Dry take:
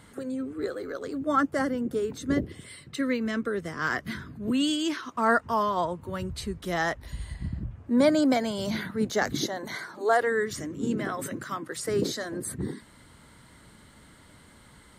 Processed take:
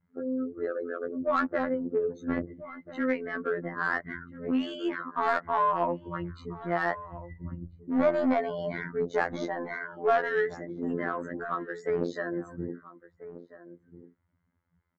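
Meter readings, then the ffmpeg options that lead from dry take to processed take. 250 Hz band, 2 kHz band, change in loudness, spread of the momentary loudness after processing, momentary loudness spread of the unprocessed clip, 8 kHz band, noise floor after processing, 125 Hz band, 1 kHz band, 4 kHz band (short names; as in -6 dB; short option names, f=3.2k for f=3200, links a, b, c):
-4.0 dB, -1.5 dB, -2.0 dB, 15 LU, 12 LU, under -20 dB, -74 dBFS, -5.0 dB, -0.5 dB, -12.0 dB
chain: -filter_complex "[0:a]afftdn=nr=30:nf=-38,aresample=16000,aeval=exprs='clip(val(0),-1,0.0841)':c=same,aresample=44100,highshelf=f=2.8k:t=q:w=1.5:g=-7.5,asplit=2[a][b];[b]highpass=f=720:p=1,volume=15dB,asoftclip=type=tanh:threshold=-10.5dB[c];[a][c]amix=inputs=2:normalize=0,lowpass=f=1k:p=1,volume=-6dB,afftfilt=real='hypot(re,im)*cos(PI*b)':imag='0':win_size=2048:overlap=0.75,asplit=2[d][e];[e]adelay=1341,volume=-15dB,highshelf=f=4k:g=-30.2[f];[d][f]amix=inputs=2:normalize=0"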